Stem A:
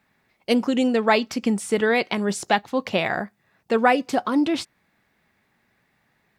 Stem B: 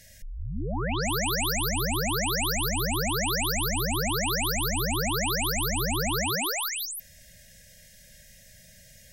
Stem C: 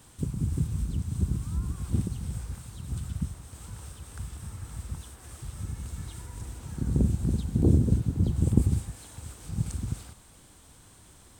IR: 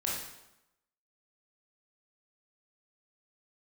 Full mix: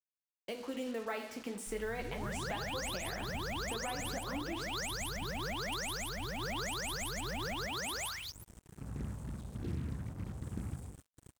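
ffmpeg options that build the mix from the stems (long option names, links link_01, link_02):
-filter_complex "[0:a]acrossover=split=280|3000[link_01][link_02][link_03];[link_01]acompressor=threshold=-36dB:ratio=6[link_04];[link_04][link_02][link_03]amix=inputs=3:normalize=0,flanger=delay=6.1:depth=8.4:regen=-32:speed=0.44:shape=triangular,volume=-5.5dB,asplit=2[link_05][link_06];[link_06]volume=-18dB[link_07];[1:a]lowshelf=frequency=440:gain=-4.5,afwtdn=0.0158,adelay=1450,volume=-6.5dB[link_08];[2:a]adelay=2000,volume=-18.5dB,asplit=2[link_09][link_10];[link_10]volume=-7.5dB[link_11];[link_05][link_09]amix=inputs=2:normalize=0,equalizer=frequency=4300:width=3.1:gain=-14,acompressor=threshold=-43dB:ratio=2,volume=0dB[link_12];[3:a]atrim=start_sample=2205[link_13];[link_07][link_11]amix=inputs=2:normalize=0[link_14];[link_14][link_13]afir=irnorm=-1:irlink=0[link_15];[link_08][link_12][link_15]amix=inputs=3:normalize=0,bandreject=frequency=80.4:width_type=h:width=4,bandreject=frequency=160.8:width_type=h:width=4,bandreject=frequency=241.2:width_type=h:width=4,bandreject=frequency=321.6:width_type=h:width=4,bandreject=frequency=402:width_type=h:width=4,bandreject=frequency=482.4:width_type=h:width=4,bandreject=frequency=562.8:width_type=h:width=4,bandreject=frequency=643.2:width_type=h:width=4,bandreject=frequency=723.6:width_type=h:width=4,bandreject=frequency=804:width_type=h:width=4,bandreject=frequency=884.4:width_type=h:width=4,bandreject=frequency=964.8:width_type=h:width=4,bandreject=frequency=1045.2:width_type=h:width=4,bandreject=frequency=1125.6:width_type=h:width=4,bandreject=frequency=1206:width_type=h:width=4,bandreject=frequency=1286.4:width_type=h:width=4,bandreject=frequency=1366.8:width_type=h:width=4,bandreject=frequency=1447.2:width_type=h:width=4,acrusher=bits=7:mix=0:aa=0.5,alimiter=level_in=4dB:limit=-24dB:level=0:latency=1:release=362,volume=-4dB"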